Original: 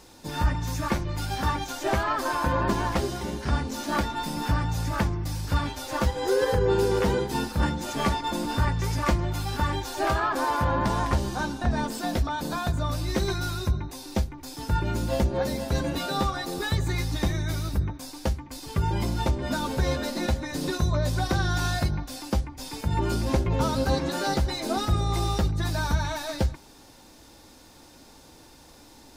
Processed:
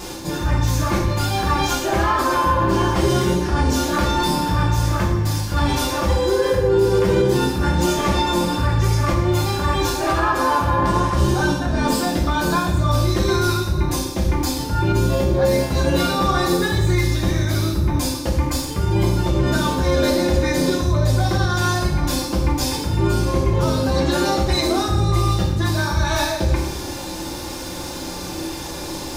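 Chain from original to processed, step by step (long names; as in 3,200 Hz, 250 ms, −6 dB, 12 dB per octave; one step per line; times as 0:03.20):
reversed playback
downward compressor 10 to 1, threshold −37 dBFS, peak gain reduction 20 dB
reversed playback
pitch vibrato 0.66 Hz 6.1 cents
convolution reverb RT60 0.80 s, pre-delay 3 ms, DRR −3 dB
boost into a limiter +23.5 dB
level −7 dB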